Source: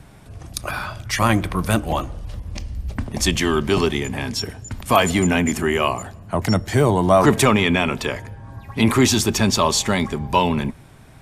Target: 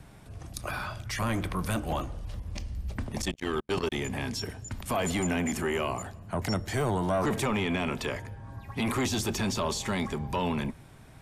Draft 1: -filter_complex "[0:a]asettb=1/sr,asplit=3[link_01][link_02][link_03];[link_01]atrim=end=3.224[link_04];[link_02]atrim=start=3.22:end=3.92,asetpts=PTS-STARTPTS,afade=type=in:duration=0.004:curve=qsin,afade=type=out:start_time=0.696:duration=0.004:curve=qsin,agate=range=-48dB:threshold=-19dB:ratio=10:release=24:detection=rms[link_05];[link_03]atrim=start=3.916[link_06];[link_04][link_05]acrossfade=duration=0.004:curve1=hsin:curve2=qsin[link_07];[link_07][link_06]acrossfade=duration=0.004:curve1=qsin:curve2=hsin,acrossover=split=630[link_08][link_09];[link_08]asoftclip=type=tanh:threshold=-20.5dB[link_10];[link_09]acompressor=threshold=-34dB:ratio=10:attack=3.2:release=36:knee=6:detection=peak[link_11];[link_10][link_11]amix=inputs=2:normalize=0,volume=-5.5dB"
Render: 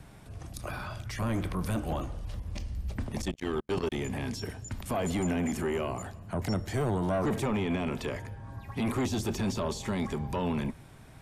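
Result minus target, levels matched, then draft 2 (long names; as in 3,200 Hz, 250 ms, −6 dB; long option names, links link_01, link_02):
downward compressor: peak gain reduction +7 dB
-filter_complex "[0:a]asettb=1/sr,asplit=3[link_01][link_02][link_03];[link_01]atrim=end=3.224[link_04];[link_02]atrim=start=3.22:end=3.92,asetpts=PTS-STARTPTS,afade=type=in:duration=0.004:curve=qsin,afade=type=out:start_time=0.696:duration=0.004:curve=qsin,agate=range=-48dB:threshold=-19dB:ratio=10:release=24:detection=rms[link_05];[link_03]atrim=start=3.916[link_06];[link_04][link_05]acrossfade=duration=0.004:curve1=hsin:curve2=qsin[link_07];[link_07][link_06]acrossfade=duration=0.004:curve1=qsin:curve2=hsin,acrossover=split=630[link_08][link_09];[link_08]asoftclip=type=tanh:threshold=-20.5dB[link_10];[link_09]acompressor=threshold=-26dB:ratio=10:attack=3.2:release=36:knee=6:detection=peak[link_11];[link_10][link_11]amix=inputs=2:normalize=0,volume=-5.5dB"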